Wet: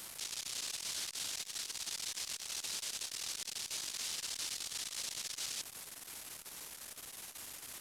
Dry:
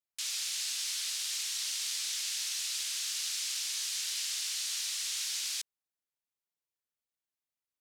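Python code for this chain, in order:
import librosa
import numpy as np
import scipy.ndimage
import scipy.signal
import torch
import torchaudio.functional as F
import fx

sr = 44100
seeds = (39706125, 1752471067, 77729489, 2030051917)

y = fx.delta_mod(x, sr, bps=64000, step_db=-37.5)
y = fx.high_shelf(y, sr, hz=10000.0, db=7.0)
y = fx.transformer_sat(y, sr, knee_hz=2700.0)
y = y * 10.0 ** (-3.5 / 20.0)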